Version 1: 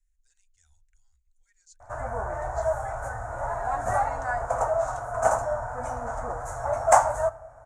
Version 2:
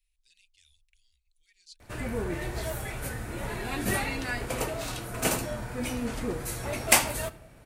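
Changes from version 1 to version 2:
speech -6.0 dB; master: remove FFT filter 110 Hz 0 dB, 160 Hz -15 dB, 260 Hz -13 dB, 370 Hz -16 dB, 670 Hz +14 dB, 1.5 kHz +5 dB, 2.6 kHz -24 dB, 4.6 kHz -21 dB, 6.8 kHz 0 dB, 14 kHz -27 dB

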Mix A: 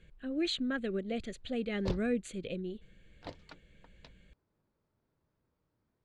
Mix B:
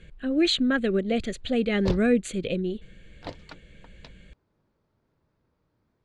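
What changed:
speech +10.5 dB; background +7.5 dB

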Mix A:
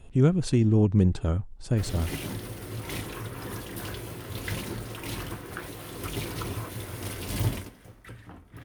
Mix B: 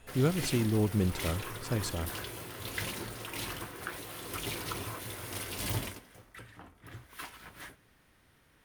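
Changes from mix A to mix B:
background: entry -1.70 s; master: add bass shelf 440 Hz -9 dB

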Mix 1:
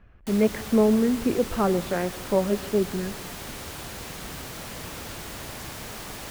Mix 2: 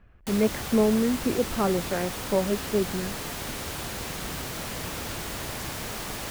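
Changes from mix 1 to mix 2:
background +5.5 dB; reverb: off

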